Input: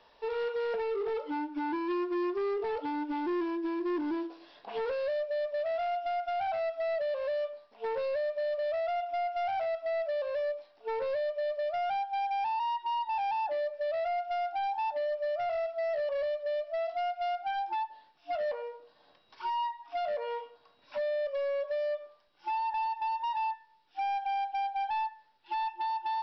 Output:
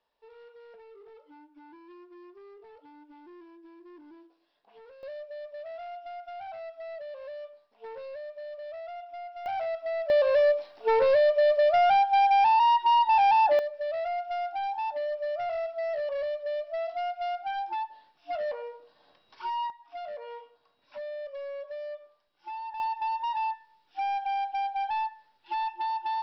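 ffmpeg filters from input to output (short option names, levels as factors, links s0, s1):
-af "asetnsamples=n=441:p=0,asendcmd='5.03 volume volume -8.5dB;9.46 volume volume 0.5dB;10.1 volume volume 10.5dB;13.59 volume volume 0.5dB;19.7 volume volume -6dB;22.8 volume volume 2dB',volume=0.112"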